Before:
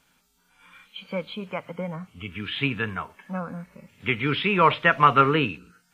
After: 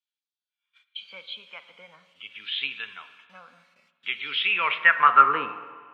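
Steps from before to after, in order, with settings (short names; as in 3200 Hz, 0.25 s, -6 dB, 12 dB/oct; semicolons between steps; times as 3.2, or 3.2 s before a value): gate -48 dBFS, range -27 dB; HPF 96 Hz; spring tank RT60 1.7 s, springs 47/51 ms, chirp 50 ms, DRR 11.5 dB; band-pass sweep 3700 Hz -> 1000 Hz, 4.27–5.49; gain +4.5 dB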